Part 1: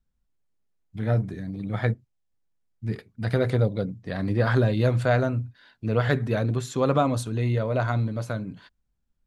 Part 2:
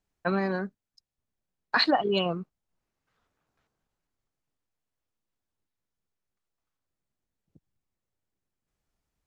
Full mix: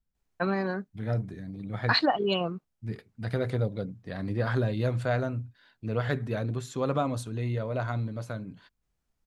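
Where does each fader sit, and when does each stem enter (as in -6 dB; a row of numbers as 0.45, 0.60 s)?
-6.0, -1.0 dB; 0.00, 0.15 s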